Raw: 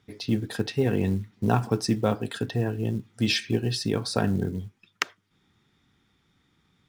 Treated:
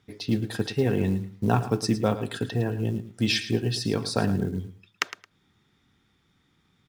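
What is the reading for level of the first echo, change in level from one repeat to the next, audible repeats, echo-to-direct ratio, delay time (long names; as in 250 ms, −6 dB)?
−13.0 dB, −14.0 dB, 2, −13.0 dB, 110 ms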